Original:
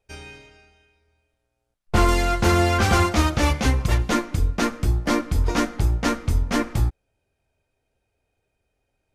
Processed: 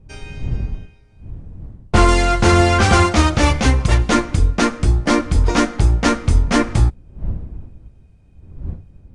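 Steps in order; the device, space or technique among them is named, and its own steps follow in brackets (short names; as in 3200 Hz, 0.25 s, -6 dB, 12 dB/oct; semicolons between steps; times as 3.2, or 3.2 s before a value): smartphone video outdoors (wind noise 83 Hz -36 dBFS; AGC gain up to 6 dB; gain +1.5 dB; AAC 96 kbps 22050 Hz)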